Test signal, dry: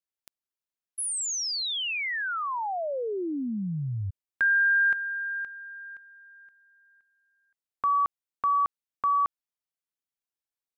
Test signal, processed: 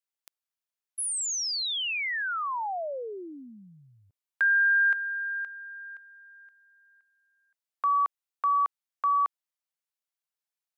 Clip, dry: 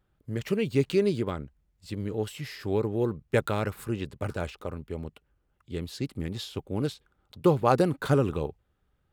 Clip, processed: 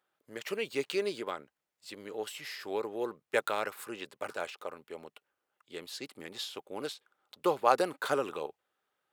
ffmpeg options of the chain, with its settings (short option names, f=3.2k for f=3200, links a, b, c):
-af "highpass=580"